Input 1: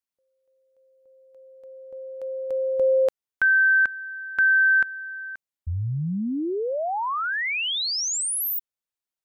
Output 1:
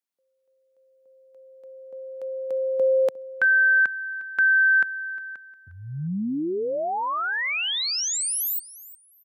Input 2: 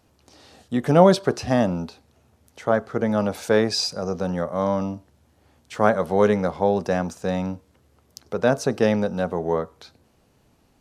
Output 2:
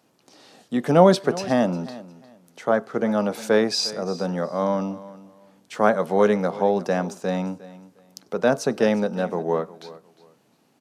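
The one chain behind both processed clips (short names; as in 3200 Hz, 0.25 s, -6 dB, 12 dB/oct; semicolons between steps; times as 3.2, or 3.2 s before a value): HPF 150 Hz 24 dB/oct; feedback echo 0.356 s, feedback 23%, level -18 dB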